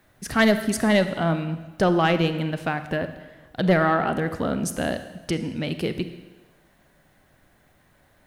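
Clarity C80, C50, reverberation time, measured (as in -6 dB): 12.5 dB, 11.0 dB, 1.2 s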